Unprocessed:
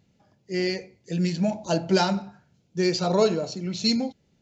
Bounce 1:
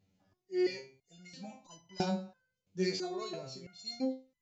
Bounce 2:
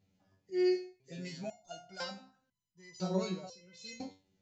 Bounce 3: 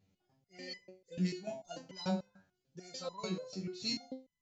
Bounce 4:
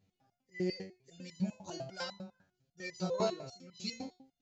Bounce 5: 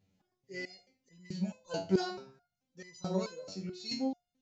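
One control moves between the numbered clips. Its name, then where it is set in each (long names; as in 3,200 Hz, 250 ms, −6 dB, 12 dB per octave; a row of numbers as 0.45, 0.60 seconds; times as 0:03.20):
step-sequenced resonator, speed: 3, 2, 6.8, 10, 4.6 Hertz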